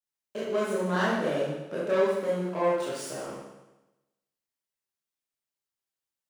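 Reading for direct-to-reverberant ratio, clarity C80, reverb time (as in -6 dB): -8.0 dB, 2.5 dB, 1.0 s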